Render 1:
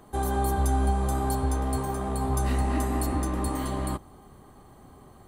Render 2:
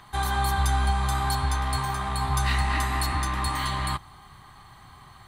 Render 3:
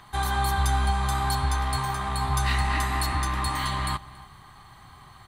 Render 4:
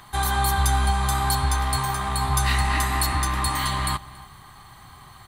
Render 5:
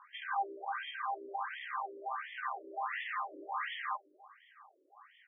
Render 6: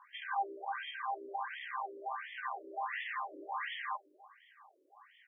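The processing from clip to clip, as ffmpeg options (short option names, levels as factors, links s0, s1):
-af "equalizer=f=125:t=o:w=1:g=5,equalizer=f=250:t=o:w=1:g=-8,equalizer=f=500:t=o:w=1:g=-12,equalizer=f=1000:t=o:w=1:g=8,equalizer=f=2000:t=o:w=1:g=9,equalizer=f=4000:t=o:w=1:g=12"
-filter_complex "[0:a]asplit=2[s0][s1];[s1]adelay=279.9,volume=0.112,highshelf=f=4000:g=-6.3[s2];[s0][s2]amix=inputs=2:normalize=0"
-af "highshelf=f=7900:g=8.5,volume=1.33"
-af "afftfilt=real='re*between(b*sr/1024,400*pow(2500/400,0.5+0.5*sin(2*PI*1.4*pts/sr))/1.41,400*pow(2500/400,0.5+0.5*sin(2*PI*1.4*pts/sr))*1.41)':imag='im*between(b*sr/1024,400*pow(2500/400,0.5+0.5*sin(2*PI*1.4*pts/sr))/1.41,400*pow(2500/400,0.5+0.5*sin(2*PI*1.4*pts/sr))*1.41)':win_size=1024:overlap=0.75,volume=0.501"
-af "bandreject=f=1300:w=5.2"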